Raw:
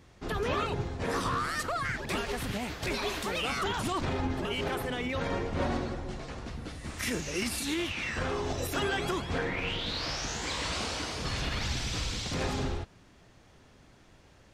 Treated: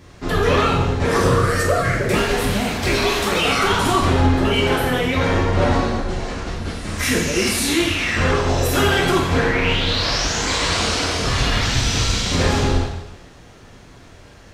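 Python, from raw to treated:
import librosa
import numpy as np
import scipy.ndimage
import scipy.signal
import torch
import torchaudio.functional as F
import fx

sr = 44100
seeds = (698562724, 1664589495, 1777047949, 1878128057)

y = fx.graphic_eq_10(x, sr, hz=(125, 500, 1000, 4000), db=(6, 10, -9, -6), at=(1.18, 2.14))
y = fx.rev_double_slope(y, sr, seeds[0], early_s=0.9, late_s=2.4, knee_db=-23, drr_db=-3.0)
y = y * librosa.db_to_amplitude(9.0)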